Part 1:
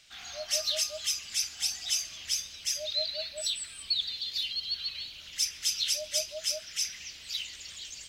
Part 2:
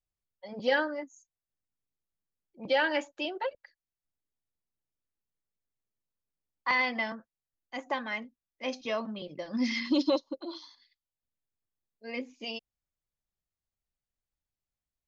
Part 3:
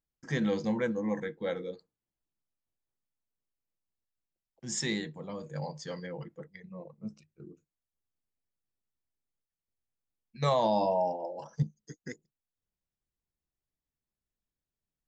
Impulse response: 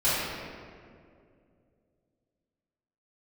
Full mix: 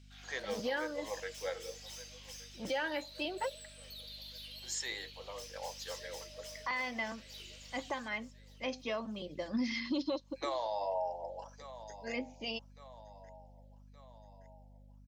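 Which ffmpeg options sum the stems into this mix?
-filter_complex "[0:a]acompressor=threshold=0.0316:ratio=6,asoftclip=type=hard:threshold=0.0178,volume=0.2,asplit=3[s0][s1][s2];[s1]volume=0.224[s3];[s2]volume=0.178[s4];[1:a]aeval=exprs='val(0)+0.00178*(sin(2*PI*50*n/s)+sin(2*PI*2*50*n/s)/2+sin(2*PI*3*50*n/s)/3+sin(2*PI*4*50*n/s)/4+sin(2*PI*5*50*n/s)/5)':c=same,volume=0.891[s5];[2:a]highpass=f=510:w=0.5412,highpass=f=510:w=1.3066,volume=0.794,asplit=2[s6][s7];[s7]volume=0.106[s8];[3:a]atrim=start_sample=2205[s9];[s3][s9]afir=irnorm=-1:irlink=0[s10];[s4][s8]amix=inputs=2:normalize=0,aecho=0:1:1171|2342|3513|4684|5855|7026|8197|9368:1|0.53|0.281|0.149|0.0789|0.0418|0.0222|0.0117[s11];[s0][s5][s6][s10][s11]amix=inputs=5:normalize=0,alimiter=level_in=1.33:limit=0.0631:level=0:latency=1:release=403,volume=0.75"

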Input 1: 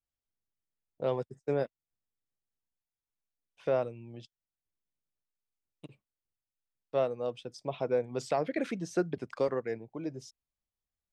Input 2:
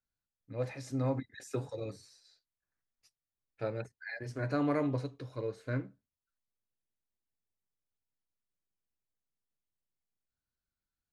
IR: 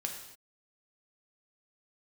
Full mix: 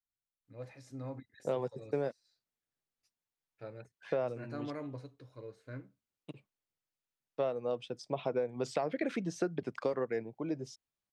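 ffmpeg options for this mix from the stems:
-filter_complex "[0:a]highpass=110,highshelf=f=7900:g=-8.5,adelay=450,volume=1.26[s0];[1:a]volume=0.299[s1];[s0][s1]amix=inputs=2:normalize=0,acompressor=threshold=0.0355:ratio=6"

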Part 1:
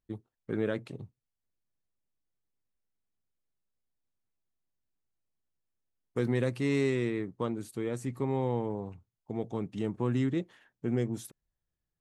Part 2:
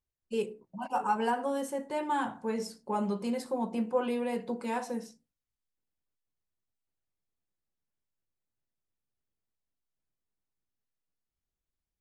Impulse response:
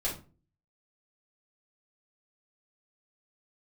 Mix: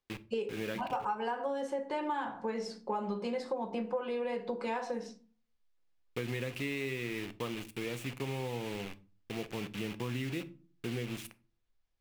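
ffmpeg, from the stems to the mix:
-filter_complex "[0:a]acrusher=bits=6:mix=0:aa=0.000001,equalizer=f=2600:w=1.5:g=13,volume=0.562,asplit=2[s0][s1];[s1]volume=0.168[s2];[1:a]asubboost=boost=4.5:cutoff=110,acontrast=74,acrossover=split=210 5800:gain=0.2 1 0.0708[s3][s4][s5];[s3][s4][s5]amix=inputs=3:normalize=0,volume=0.841,asplit=2[s6][s7];[s7]volume=0.237[s8];[2:a]atrim=start_sample=2205[s9];[s2][s8]amix=inputs=2:normalize=0[s10];[s10][s9]afir=irnorm=-1:irlink=0[s11];[s0][s6][s11]amix=inputs=3:normalize=0,acompressor=threshold=0.0251:ratio=6"

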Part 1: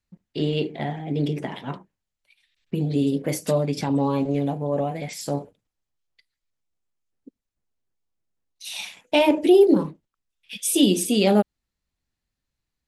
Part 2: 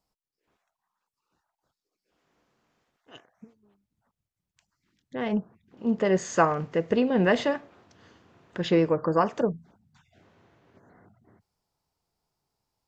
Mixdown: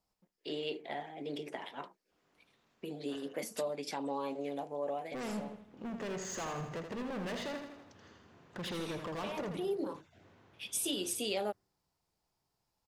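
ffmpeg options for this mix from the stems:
-filter_complex "[0:a]highpass=450,acompressor=threshold=0.0631:ratio=4,adelay=100,volume=0.398[s0];[1:a]acompressor=threshold=0.0398:ratio=2.5,asoftclip=type=hard:threshold=0.0178,volume=0.708,asplit=3[s1][s2][s3];[s2]volume=0.447[s4];[s3]apad=whole_len=572146[s5];[s0][s5]sidechaincompress=threshold=0.00224:ratio=3:attack=26:release=163[s6];[s4]aecho=0:1:81|162|243|324|405|486|567|648:1|0.52|0.27|0.141|0.0731|0.038|0.0198|0.0103[s7];[s6][s1][s7]amix=inputs=3:normalize=0"

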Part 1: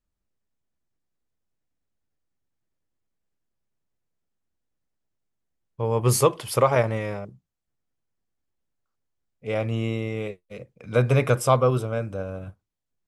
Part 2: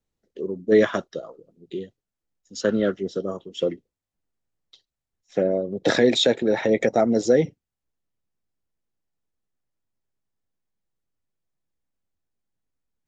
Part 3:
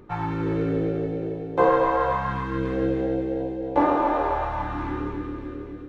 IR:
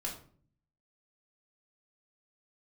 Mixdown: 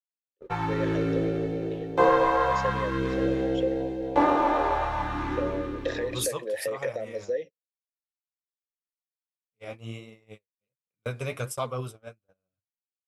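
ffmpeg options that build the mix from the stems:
-filter_complex "[0:a]flanger=delay=4:depth=9.2:regen=38:speed=1.3:shape=triangular,adelay=100,volume=0.355[s0];[1:a]highshelf=f=5400:g=11.5,acompressor=threshold=0.0891:ratio=4,asplit=3[s1][s2][s3];[s1]bandpass=f=530:t=q:w=8,volume=1[s4];[s2]bandpass=f=1840:t=q:w=8,volume=0.501[s5];[s3]bandpass=f=2480:t=q:w=8,volume=0.355[s6];[s4][s5][s6]amix=inputs=3:normalize=0,volume=0.891,asplit=3[s7][s8][s9];[s8]volume=0.0668[s10];[2:a]adelay=400,volume=0.794[s11];[s9]apad=whole_len=580939[s12];[s0][s12]sidechaincompress=threshold=0.0126:ratio=4:attack=16:release=131[s13];[3:a]atrim=start_sample=2205[s14];[s10][s14]afir=irnorm=-1:irlink=0[s15];[s13][s7][s11][s15]amix=inputs=4:normalize=0,agate=range=0.0112:threshold=0.0126:ratio=16:detection=peak,highshelf=f=2500:g=10.5"

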